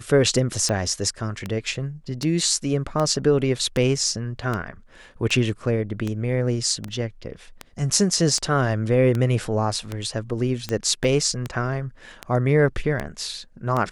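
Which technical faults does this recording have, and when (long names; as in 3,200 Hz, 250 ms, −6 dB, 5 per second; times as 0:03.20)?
scratch tick 78 rpm −13 dBFS
0:06.88: drop-out 3.3 ms
0:11.04: drop-out 3.5 ms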